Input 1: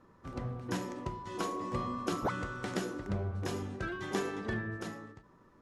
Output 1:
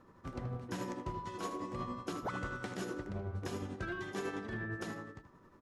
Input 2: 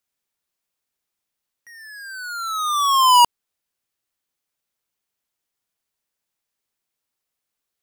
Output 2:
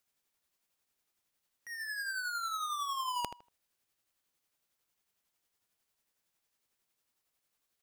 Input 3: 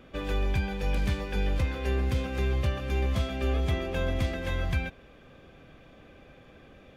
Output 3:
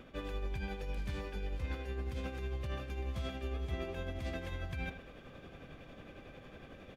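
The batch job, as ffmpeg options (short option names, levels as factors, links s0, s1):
-filter_complex "[0:a]areverse,acompressor=threshold=0.0158:ratio=16,areverse,tremolo=f=11:d=0.4,asplit=2[s0][s1];[s1]adelay=79,lowpass=f=3300:p=1,volume=0.299,asplit=2[s2][s3];[s3]adelay=79,lowpass=f=3300:p=1,volume=0.22,asplit=2[s4][s5];[s5]adelay=79,lowpass=f=3300:p=1,volume=0.22[s6];[s0][s2][s4][s6]amix=inputs=4:normalize=0,volume=1.26"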